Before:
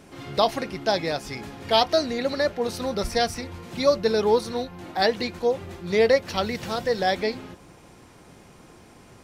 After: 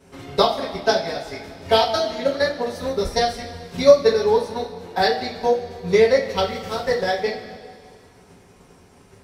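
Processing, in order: transient shaper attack +11 dB, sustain -4 dB; two-slope reverb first 0.25 s, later 2.1 s, from -18 dB, DRR -9 dB; gain -11.5 dB

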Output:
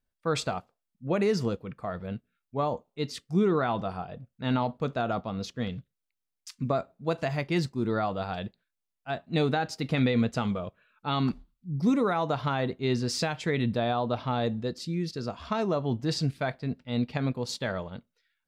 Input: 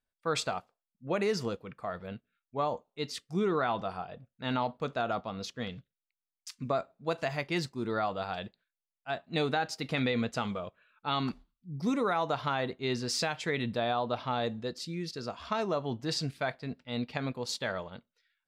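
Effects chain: low shelf 370 Hz +9 dB

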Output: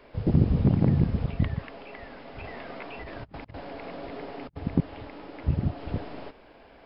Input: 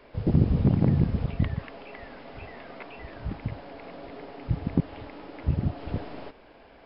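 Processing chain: 2.38–4.57 negative-ratio compressor -40 dBFS, ratio -0.5

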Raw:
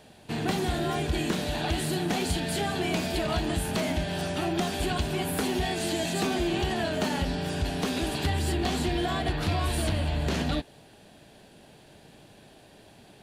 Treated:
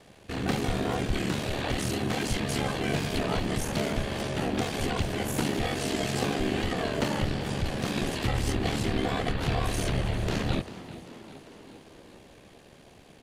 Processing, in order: ring modulator 36 Hz; frequency-shifting echo 0.395 s, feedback 62%, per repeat +71 Hz, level -16.5 dB; harmoniser -7 st -1 dB

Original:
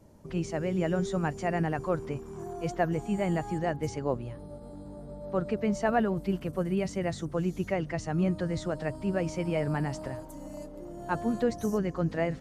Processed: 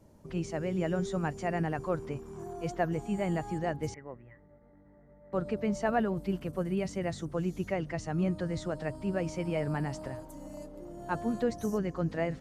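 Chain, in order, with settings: 3.94–5.33 ladder low-pass 2000 Hz, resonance 90%; gain -2.5 dB

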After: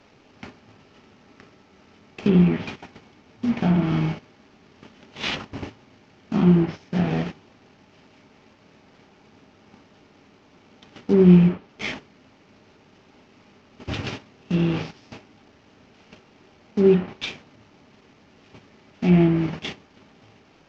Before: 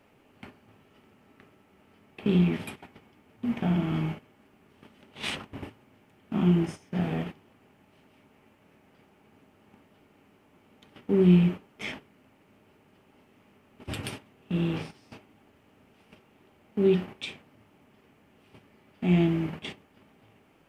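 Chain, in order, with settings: CVSD 32 kbps; treble ducked by the level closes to 2200 Hz, closed at -21 dBFS; gain +6.5 dB

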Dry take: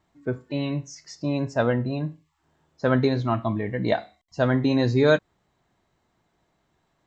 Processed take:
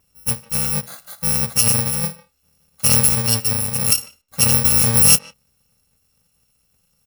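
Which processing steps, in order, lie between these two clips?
FFT order left unsorted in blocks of 128 samples; speakerphone echo 0.15 s, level -18 dB; gain +6 dB

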